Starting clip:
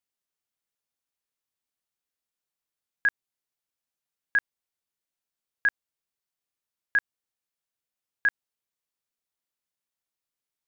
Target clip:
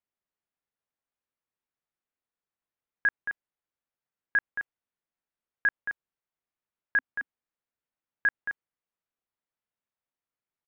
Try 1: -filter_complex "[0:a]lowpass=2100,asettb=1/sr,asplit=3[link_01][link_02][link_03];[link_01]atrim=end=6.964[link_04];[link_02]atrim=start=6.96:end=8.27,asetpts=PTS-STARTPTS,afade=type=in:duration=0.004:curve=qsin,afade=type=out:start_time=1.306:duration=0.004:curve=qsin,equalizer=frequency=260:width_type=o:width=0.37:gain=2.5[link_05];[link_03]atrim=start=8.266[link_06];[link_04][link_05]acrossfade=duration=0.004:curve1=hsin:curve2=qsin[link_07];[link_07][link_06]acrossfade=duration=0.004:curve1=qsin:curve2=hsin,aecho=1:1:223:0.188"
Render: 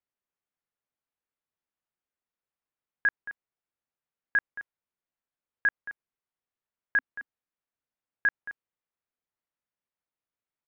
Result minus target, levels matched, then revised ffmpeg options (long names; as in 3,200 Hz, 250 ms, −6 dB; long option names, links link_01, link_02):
echo-to-direct −6 dB
-filter_complex "[0:a]lowpass=2100,asettb=1/sr,asplit=3[link_01][link_02][link_03];[link_01]atrim=end=6.964[link_04];[link_02]atrim=start=6.96:end=8.27,asetpts=PTS-STARTPTS,afade=type=in:duration=0.004:curve=qsin,afade=type=out:start_time=1.306:duration=0.004:curve=qsin,equalizer=frequency=260:width_type=o:width=0.37:gain=2.5[link_05];[link_03]atrim=start=8.266[link_06];[link_04][link_05]acrossfade=duration=0.004:curve1=hsin:curve2=qsin[link_07];[link_07][link_06]acrossfade=duration=0.004:curve1=qsin:curve2=hsin,aecho=1:1:223:0.376"